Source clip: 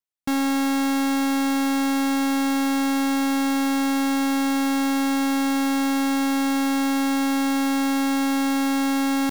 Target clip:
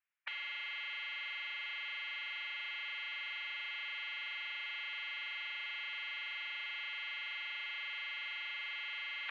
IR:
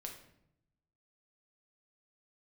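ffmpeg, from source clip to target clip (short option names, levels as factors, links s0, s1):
-filter_complex "[0:a]afftfilt=real='re*lt(hypot(re,im),0.0355)':imag='im*lt(hypot(re,im),0.0355)':win_size=1024:overlap=0.75,acrossover=split=1800[s0][s1];[s0]acrusher=bits=3:mix=0:aa=0.000001[s2];[s2][s1]amix=inputs=2:normalize=0,highpass=f=230:t=q:w=0.5412,highpass=f=230:t=q:w=1.307,lowpass=f=2800:t=q:w=0.5176,lowpass=f=2800:t=q:w=0.7071,lowpass=f=2800:t=q:w=1.932,afreqshift=-360,volume=5.01"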